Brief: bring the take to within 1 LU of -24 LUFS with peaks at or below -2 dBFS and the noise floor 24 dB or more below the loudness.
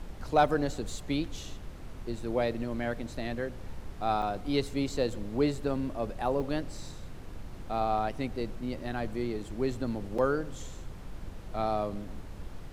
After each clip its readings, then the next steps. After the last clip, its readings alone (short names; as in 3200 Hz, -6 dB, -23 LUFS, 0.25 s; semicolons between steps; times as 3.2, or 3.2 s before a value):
dropouts 3; longest dropout 4.9 ms; noise floor -44 dBFS; noise floor target -57 dBFS; loudness -32.5 LUFS; peak -12.5 dBFS; loudness target -24.0 LUFS
-> interpolate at 4.22/6.4/10.18, 4.9 ms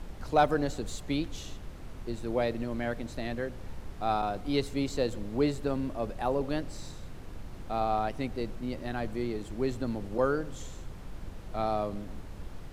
dropouts 0; noise floor -44 dBFS; noise floor target -57 dBFS
-> noise print and reduce 13 dB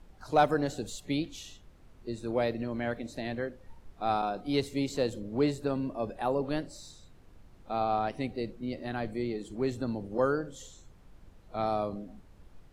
noise floor -57 dBFS; loudness -32.5 LUFS; peak -13.0 dBFS; loudness target -24.0 LUFS
-> gain +8.5 dB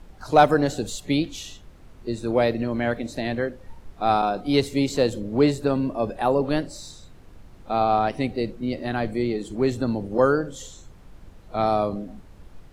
loudness -24.0 LUFS; peak -4.5 dBFS; noise floor -48 dBFS